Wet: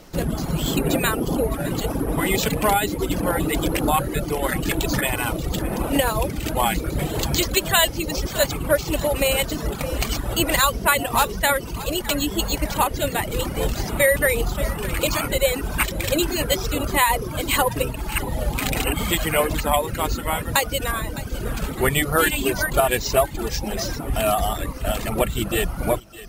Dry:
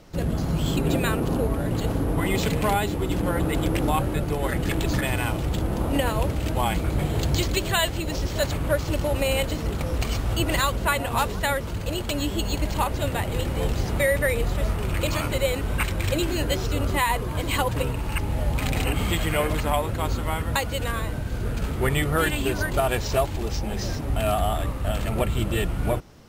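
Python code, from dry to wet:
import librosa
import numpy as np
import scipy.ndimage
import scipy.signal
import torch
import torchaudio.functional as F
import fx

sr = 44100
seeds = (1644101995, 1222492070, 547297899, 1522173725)

p1 = fx.peak_eq(x, sr, hz=88.0, db=-8.5, octaves=1.1)
p2 = p1 + fx.echo_feedback(p1, sr, ms=609, feedback_pct=51, wet_db=-15.5, dry=0)
p3 = fx.dereverb_blind(p2, sr, rt60_s=1.0)
p4 = fx.high_shelf(p3, sr, hz=8400.0, db=8.0)
y = p4 * 10.0 ** (5.0 / 20.0)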